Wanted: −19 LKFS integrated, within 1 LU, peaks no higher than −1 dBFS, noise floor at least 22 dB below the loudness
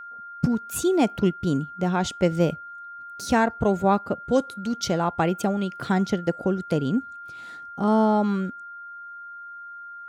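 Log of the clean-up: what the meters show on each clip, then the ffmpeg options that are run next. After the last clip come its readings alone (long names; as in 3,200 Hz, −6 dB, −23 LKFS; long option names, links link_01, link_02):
interfering tone 1,400 Hz; level of the tone −37 dBFS; integrated loudness −24.5 LKFS; sample peak −8.0 dBFS; target loudness −19.0 LKFS
→ -af "bandreject=frequency=1400:width=30"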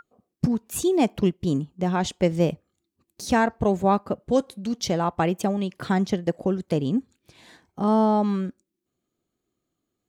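interfering tone none found; integrated loudness −24.5 LKFS; sample peak −8.5 dBFS; target loudness −19.0 LKFS
→ -af "volume=5.5dB"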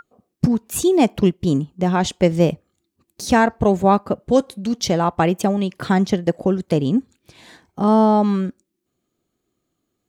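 integrated loudness −19.0 LKFS; sample peak −3.0 dBFS; background noise floor −76 dBFS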